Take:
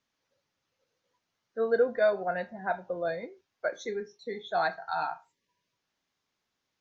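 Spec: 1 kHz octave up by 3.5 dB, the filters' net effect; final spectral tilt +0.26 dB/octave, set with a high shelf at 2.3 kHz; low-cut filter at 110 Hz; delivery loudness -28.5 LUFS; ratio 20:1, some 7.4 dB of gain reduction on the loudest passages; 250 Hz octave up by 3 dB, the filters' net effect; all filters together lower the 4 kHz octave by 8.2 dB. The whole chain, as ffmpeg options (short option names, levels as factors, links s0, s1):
-af "highpass=110,equalizer=f=250:t=o:g=4,equalizer=f=1000:t=o:g=6,highshelf=f=2300:g=-3.5,equalizer=f=4000:t=o:g=-6.5,acompressor=threshold=0.0631:ratio=20,volume=1.58"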